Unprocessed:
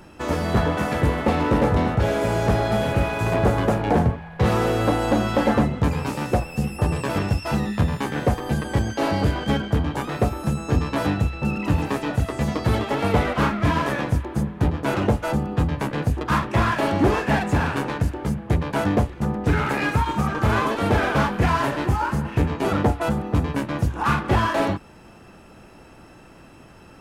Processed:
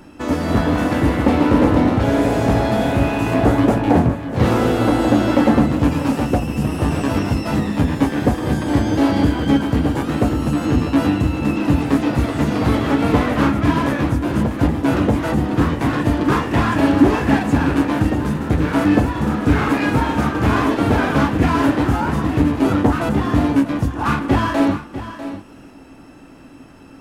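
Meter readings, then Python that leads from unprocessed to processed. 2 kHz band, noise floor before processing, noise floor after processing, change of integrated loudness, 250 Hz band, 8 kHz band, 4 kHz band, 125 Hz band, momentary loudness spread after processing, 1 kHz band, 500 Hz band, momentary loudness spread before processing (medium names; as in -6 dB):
+2.5 dB, -47 dBFS, -41 dBFS, +5.0 dB, +8.5 dB, +2.5 dB, +3.0 dB, +3.0 dB, 5 LU, +2.5 dB, +3.0 dB, 5 LU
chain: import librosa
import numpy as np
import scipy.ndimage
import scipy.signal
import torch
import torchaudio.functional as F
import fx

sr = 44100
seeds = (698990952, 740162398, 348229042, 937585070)

p1 = fx.peak_eq(x, sr, hz=270.0, db=13.0, octaves=0.3)
p2 = p1 + fx.echo_single(p1, sr, ms=647, db=-12.5, dry=0)
p3 = fx.echo_pitch(p2, sr, ms=212, semitones=1, count=3, db_per_echo=-6.0)
y = F.gain(torch.from_numpy(p3), 1.0).numpy()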